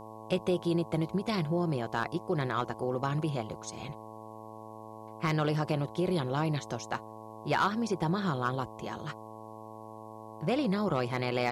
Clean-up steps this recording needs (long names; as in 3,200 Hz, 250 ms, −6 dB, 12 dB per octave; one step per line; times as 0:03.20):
clipped peaks rebuilt −19 dBFS
hum removal 109.7 Hz, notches 10
downward expander −38 dBFS, range −21 dB